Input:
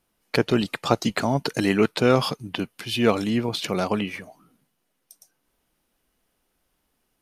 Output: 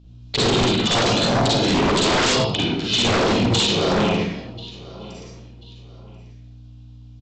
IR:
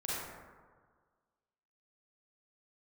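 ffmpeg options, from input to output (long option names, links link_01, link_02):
-filter_complex "[0:a]highshelf=frequency=2700:width_type=q:width=3:gain=10,asplit=2[link_01][link_02];[link_02]asetrate=37084,aresample=44100,atempo=1.18921,volume=-4dB[link_03];[link_01][link_03]amix=inputs=2:normalize=0,aemphasis=mode=reproduction:type=75kf,asplit=2[link_04][link_05];[link_05]aecho=0:1:1038|2076:0.0891|0.0258[link_06];[link_04][link_06]amix=inputs=2:normalize=0,aeval=exprs='val(0)+0.00562*(sin(2*PI*60*n/s)+sin(2*PI*2*60*n/s)/2+sin(2*PI*3*60*n/s)/3+sin(2*PI*4*60*n/s)/4+sin(2*PI*5*60*n/s)/5)':channel_layout=same[link_07];[1:a]atrim=start_sample=2205,afade=type=out:start_time=0.36:duration=0.01,atrim=end_sample=16317[link_08];[link_07][link_08]afir=irnorm=-1:irlink=0,aresample=16000,aeval=exprs='0.168*(abs(mod(val(0)/0.168+3,4)-2)-1)':channel_layout=same,aresample=44100,volume=2.5dB"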